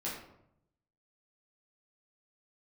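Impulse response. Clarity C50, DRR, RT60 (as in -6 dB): 3.0 dB, -7.5 dB, 0.75 s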